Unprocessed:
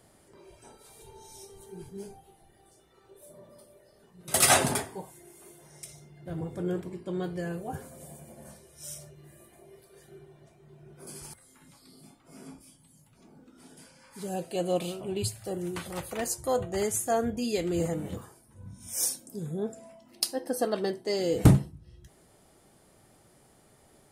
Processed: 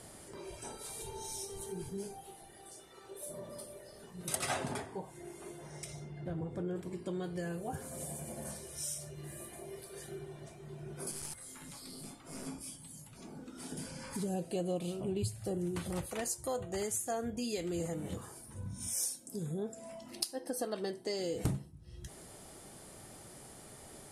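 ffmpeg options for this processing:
-filter_complex "[0:a]asettb=1/sr,asplit=3[a][b][c];[a]atrim=end=2.074[d];[b]atrim=start=2.07:end=3.27,asetpts=PTS-STARTPTS,afade=t=in:d=0.004:c=qsin,afade=t=out:st=1.196:d=0.004:c=qsin,lowshelf=f=150:g=-9.5[e];[c]atrim=start=3.266[f];[d][e]acrossfade=d=0.004:c1=hsin:c2=qsin[g];[g][f]acrossfade=d=0.004:c1=qsin:c2=hsin,asettb=1/sr,asplit=3[h][i][j];[h]atrim=end=4.354[k];[i]atrim=start=4.35:end=6.76,asetpts=PTS-STARTPTS,afade=t=in:d=0.004:c=qsin,afade=t=out:st=2.406:d=0.004:c=qsin,aemphasis=mode=reproduction:type=75kf[l];[j]atrim=start=6.756[m];[k][l]acrossfade=d=0.004:c1=hsin:c2=qsin[n];[n][m]acrossfade=d=0.004:c1=qsin:c2=hsin,asettb=1/sr,asplit=3[o][p][q];[o]atrim=end=11.114[r];[p]atrim=start=11.11:end=12.47,asetpts=PTS-STARTPTS,afade=t=in:d=0.004:c=qsin,afade=t=out:st=1.356:d=0.004:c=qsin,aeval=exprs='clip(val(0),-1,0.00168)':c=same[s];[q]atrim=start=12.466[t];[r][s]acrossfade=d=0.004:c1=hsin:c2=qsin[u];[u][t]acrossfade=d=0.004:c1=qsin:c2=hsin,asettb=1/sr,asplit=3[v][w][x];[v]atrim=end=13.724[y];[w]atrim=start=13.72:end=16.06,asetpts=PTS-STARTPTS,afade=t=in:d=0.004:c=qsin,afade=t=out:st=2.336:d=0.004:c=qsin,lowshelf=f=450:g=11[z];[x]atrim=start=16.056[aa];[y][z]acrossfade=d=0.004:c1=hsin:c2=qsin[ab];[ab][aa]acrossfade=d=0.004:c1=qsin:c2=hsin,lowpass=f=12k:w=0.5412,lowpass=f=12k:w=1.3066,highshelf=f=4.9k:g=6,acompressor=threshold=-46dB:ratio=3,volume=6.5dB"

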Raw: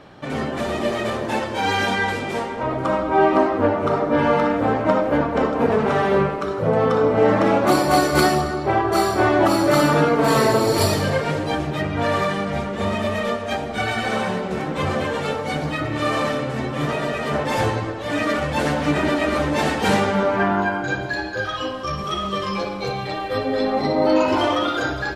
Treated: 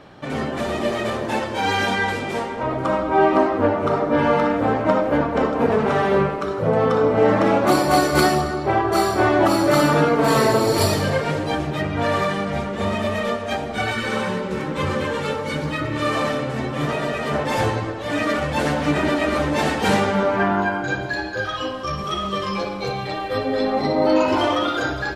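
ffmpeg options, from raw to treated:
-filter_complex "[0:a]asettb=1/sr,asplit=3[a][b][c];[a]atrim=end=13.914[d];[b]atrim=start=13.91:end=16.15,asetpts=PTS-STARTPTS,afade=t=in:d=0.004:c=qsin,afade=t=out:st=2.236:d=0.004:c=qsin,asuperstop=centerf=710:order=12:qfactor=4.9[e];[c]atrim=start=16.146[f];[d][e]acrossfade=d=0.004:c1=hsin:c2=qsin[g];[g][f]acrossfade=d=0.004:c1=qsin:c2=hsin"

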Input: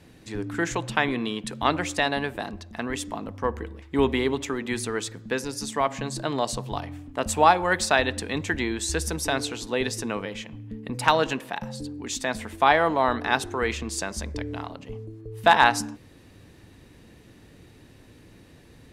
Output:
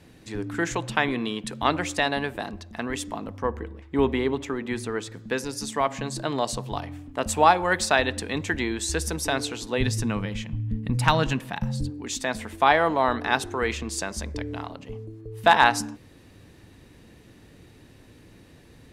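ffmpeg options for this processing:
-filter_complex "[0:a]asettb=1/sr,asplit=3[a][b][c];[a]atrim=end=3.424[d];[b]atrim=start=3.42:end=5.12,asetpts=PTS-STARTPTS,afade=t=in:d=0.004:c=qsin,afade=t=out:st=1.696:d=0.004:c=qsin,highshelf=f=3k:g=-8.5[e];[c]atrim=start=5.116[f];[d][e]acrossfade=d=0.004:c1=hsin:c2=qsin[g];[g][f]acrossfade=d=0.004:c1=qsin:c2=hsin,asplit=3[h][i][j];[h]afade=t=out:st=9.77:d=0.02[k];[i]asubboost=boost=5.5:cutoff=170,afade=t=in:st=9.77:d=0.02,afade=t=out:st=11.89:d=0.02[l];[j]afade=t=in:st=11.89:d=0.02[m];[k][l][m]amix=inputs=3:normalize=0"

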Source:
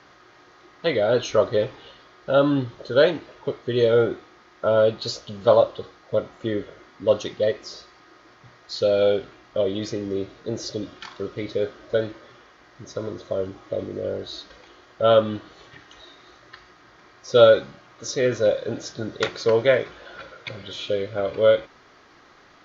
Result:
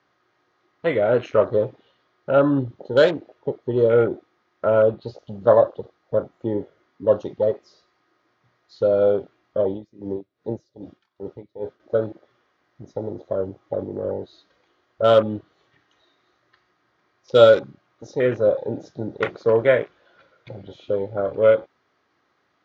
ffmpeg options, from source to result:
-filter_complex "[0:a]asettb=1/sr,asplit=3[a][b][c];[a]atrim=end=4.674[d];[b]atrim=start=4.67:end=5.19,asetpts=PTS-STARTPTS,afade=t=in:d=0.004:c=qsin,afade=t=out:st=0.516:d=0.004:c=qsin,lowpass=4k[e];[c]atrim=start=5.186[f];[d][e]acrossfade=d=0.004:c1=hsin:c2=qsin[g];[g][f]acrossfade=d=0.004:c1=qsin:c2=hsin,asettb=1/sr,asplit=3[h][i][j];[h]atrim=end=9.704[k];[i]atrim=start=9.7:end=11.8,asetpts=PTS-STARTPTS,afade=t=in:d=0.004:c=qsin,afade=t=out:st=2.096:d=0.004:c=qsin,aeval=exprs='val(0)*pow(10,-21*(0.5-0.5*cos(2*PI*2.5*n/s))/20)':c=same[l];[j]atrim=start=11.796[m];[k][l]acrossfade=d=0.004:c1=hsin:c2=qsin[n];[n][m]acrossfade=d=0.004:c1=qsin:c2=hsin,highpass=f=73:w=0.5412,highpass=f=73:w=1.3066,afwtdn=0.0251,highshelf=f=5.6k:g=-6.5,volume=1.5dB"

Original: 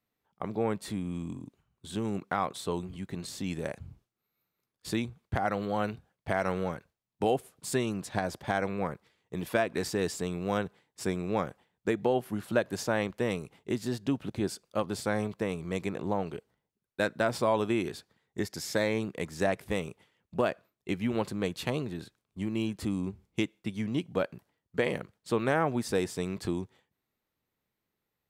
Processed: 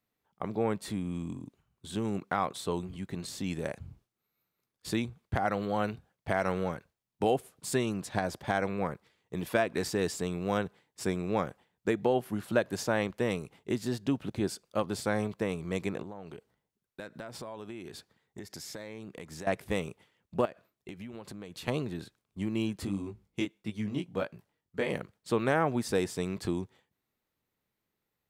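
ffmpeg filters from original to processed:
-filter_complex "[0:a]asettb=1/sr,asplit=3[a][b][c];[a]atrim=end=16.024[d];[b]atrim=start=16.02:end=19.47,asetpts=PTS-STARTPTS,afade=t=in:d=0.004:c=qsin,afade=t=out:st=3.446:d=0.004:c=qsin,acompressor=threshold=-40dB:ratio=5:attack=3.2:release=140:knee=1:detection=peak[e];[c]atrim=start=19.466[f];[d][e]acrossfade=d=0.004:c1=hsin:c2=qsin[g];[g][f]acrossfade=d=0.004:c1=qsin:c2=hsin,asettb=1/sr,asplit=3[h][i][j];[h]atrim=end=20.454[k];[i]atrim=start=20.45:end=21.68,asetpts=PTS-STARTPTS,afade=t=in:d=0.004:c=qsin,afade=t=out:st=1.226:d=0.004:c=qsin,acompressor=threshold=-39dB:ratio=12:attack=3.2:release=140:knee=1:detection=peak[l];[j]atrim=start=21.676[m];[k][l]acrossfade=d=0.004:c1=hsin:c2=qsin[n];[n][m]acrossfade=d=0.004:c1=qsin:c2=hsin,asplit=3[o][p][q];[o]afade=t=out:st=22.85:d=0.02[r];[p]flanger=delay=18.5:depth=3.2:speed=1.6,afade=t=in:st=22.85:d=0.02,afade=t=out:st=24.88:d=0.02[s];[q]afade=t=in:st=24.88:d=0.02[t];[r][s][t]amix=inputs=3:normalize=0"

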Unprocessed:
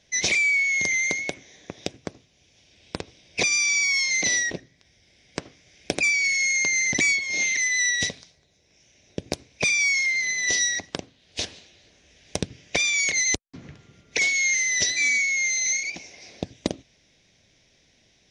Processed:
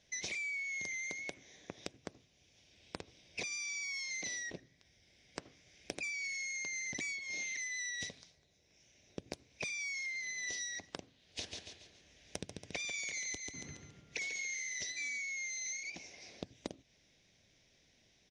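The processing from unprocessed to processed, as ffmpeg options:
-filter_complex "[0:a]asplit=3[a][b][c];[a]afade=t=out:st=11.39:d=0.02[d];[b]aecho=1:1:140|280|420|560:0.447|0.17|0.0645|0.0245,afade=t=in:st=11.39:d=0.02,afade=t=out:st=14.91:d=0.02[e];[c]afade=t=in:st=14.91:d=0.02[f];[d][e][f]amix=inputs=3:normalize=0,acompressor=threshold=-32dB:ratio=4,volume=-8dB"

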